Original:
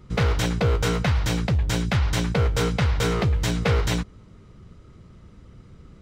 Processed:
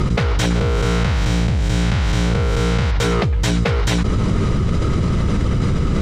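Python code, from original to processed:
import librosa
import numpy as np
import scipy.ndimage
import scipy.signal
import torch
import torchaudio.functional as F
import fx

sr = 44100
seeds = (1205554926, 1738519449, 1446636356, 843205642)

y = fx.spec_blur(x, sr, span_ms=208.0, at=(0.54, 2.9), fade=0.02)
y = scipy.signal.sosfilt(scipy.signal.butter(2, 11000.0, 'lowpass', fs=sr, output='sos'), y)
y = fx.env_flatten(y, sr, amount_pct=100)
y = y * 10.0 ** (1.0 / 20.0)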